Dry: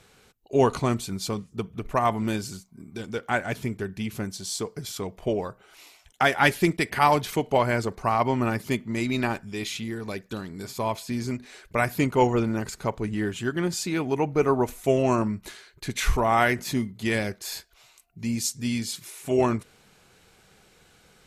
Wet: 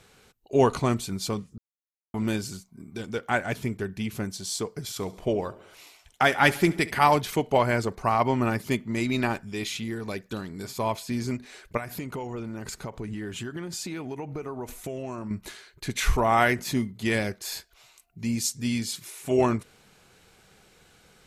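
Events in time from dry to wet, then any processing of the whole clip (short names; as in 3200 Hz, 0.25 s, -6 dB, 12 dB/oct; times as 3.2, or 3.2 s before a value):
1.58–2.14 mute
4.83–7.06 feedback echo 69 ms, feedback 60%, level -19.5 dB
11.77–15.31 compressor 10:1, threshold -30 dBFS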